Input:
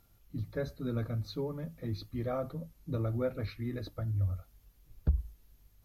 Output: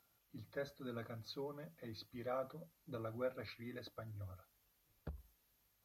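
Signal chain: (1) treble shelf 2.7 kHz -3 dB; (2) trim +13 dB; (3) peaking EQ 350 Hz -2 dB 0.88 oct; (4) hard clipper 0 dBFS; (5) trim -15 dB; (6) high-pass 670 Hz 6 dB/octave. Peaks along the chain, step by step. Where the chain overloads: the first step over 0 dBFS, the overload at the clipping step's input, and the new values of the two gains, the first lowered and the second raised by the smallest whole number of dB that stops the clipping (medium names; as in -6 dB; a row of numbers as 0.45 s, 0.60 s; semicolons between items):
-16.5 dBFS, -3.5 dBFS, -3.5 dBFS, -3.5 dBFS, -18.5 dBFS, -29.0 dBFS; nothing clips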